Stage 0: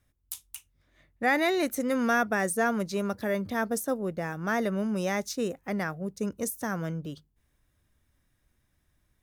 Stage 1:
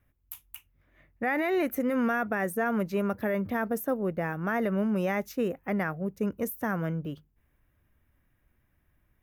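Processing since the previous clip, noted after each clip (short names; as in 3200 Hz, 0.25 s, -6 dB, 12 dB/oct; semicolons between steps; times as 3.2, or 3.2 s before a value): limiter -21 dBFS, peak gain reduction 6.5 dB; band shelf 5900 Hz -14 dB; gain +2 dB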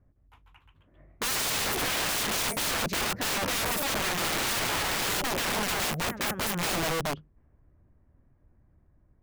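low-pass opened by the level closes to 760 Hz, open at -25 dBFS; echoes that change speed 0.161 s, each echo +1 st, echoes 3, each echo -6 dB; wrapped overs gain 30.5 dB; gain +6.5 dB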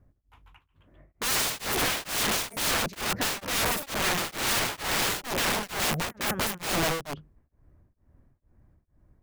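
beating tremolo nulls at 2.2 Hz; gain +3.5 dB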